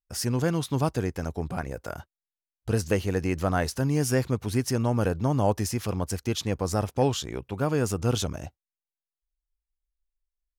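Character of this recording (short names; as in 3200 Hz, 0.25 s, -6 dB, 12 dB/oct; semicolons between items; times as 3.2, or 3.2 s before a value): noise floor -94 dBFS; spectral tilt -5.5 dB/oct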